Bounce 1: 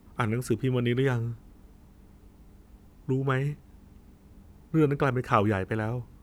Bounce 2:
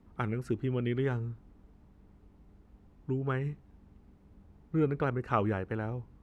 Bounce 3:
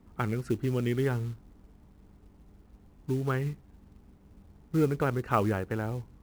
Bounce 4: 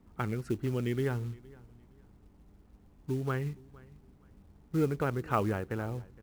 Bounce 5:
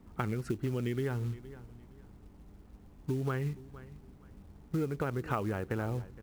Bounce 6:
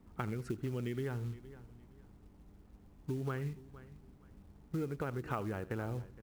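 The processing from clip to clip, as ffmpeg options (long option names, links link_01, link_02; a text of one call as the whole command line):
ffmpeg -i in.wav -af "aemphasis=mode=reproduction:type=75kf,volume=-5dB" out.wav
ffmpeg -i in.wav -af "acrusher=bits=6:mode=log:mix=0:aa=0.000001,volume=2.5dB" out.wav
ffmpeg -i in.wav -af "aecho=1:1:464|928:0.0708|0.0184,volume=-3dB" out.wav
ffmpeg -i in.wav -af "acompressor=threshold=-34dB:ratio=6,volume=4.5dB" out.wav
ffmpeg -i in.wav -af "aecho=1:1:80:0.119,volume=-4.5dB" out.wav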